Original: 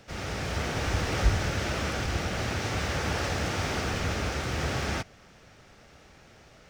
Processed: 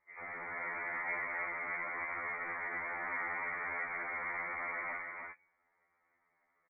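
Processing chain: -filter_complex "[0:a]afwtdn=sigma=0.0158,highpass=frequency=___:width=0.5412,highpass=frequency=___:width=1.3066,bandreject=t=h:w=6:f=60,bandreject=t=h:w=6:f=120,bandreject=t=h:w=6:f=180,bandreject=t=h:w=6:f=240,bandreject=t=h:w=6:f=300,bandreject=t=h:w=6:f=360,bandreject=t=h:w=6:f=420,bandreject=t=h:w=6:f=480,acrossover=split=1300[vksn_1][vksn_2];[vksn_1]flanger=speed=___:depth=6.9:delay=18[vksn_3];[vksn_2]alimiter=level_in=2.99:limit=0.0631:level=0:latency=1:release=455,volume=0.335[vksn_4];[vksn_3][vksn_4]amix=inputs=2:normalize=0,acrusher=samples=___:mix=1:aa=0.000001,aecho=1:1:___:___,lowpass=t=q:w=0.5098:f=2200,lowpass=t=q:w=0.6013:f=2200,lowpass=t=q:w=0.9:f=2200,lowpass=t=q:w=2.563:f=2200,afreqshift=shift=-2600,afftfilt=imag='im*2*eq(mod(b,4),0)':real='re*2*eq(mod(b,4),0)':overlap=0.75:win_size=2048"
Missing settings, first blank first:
340, 340, 0.86, 4, 299, 0.631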